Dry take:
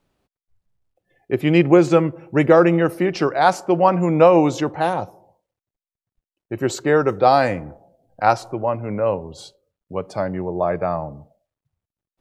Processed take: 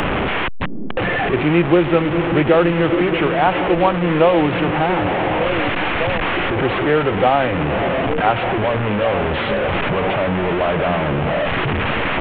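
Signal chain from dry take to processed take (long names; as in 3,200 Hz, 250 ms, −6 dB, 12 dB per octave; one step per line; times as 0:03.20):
linear delta modulator 16 kbit/s, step −14.5 dBFS
echo through a band-pass that steps 599 ms, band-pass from 230 Hz, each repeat 0.7 octaves, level −6 dB
multiband upward and downward compressor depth 40%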